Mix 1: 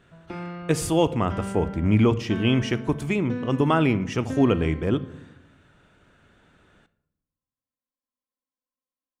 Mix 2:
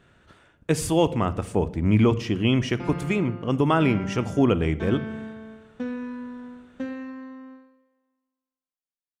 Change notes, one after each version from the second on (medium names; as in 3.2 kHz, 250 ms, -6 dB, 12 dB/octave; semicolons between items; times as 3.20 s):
background: entry +2.50 s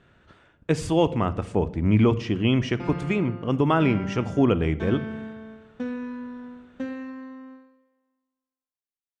speech: add distance through air 77 m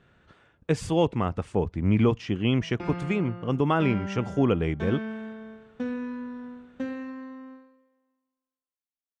reverb: off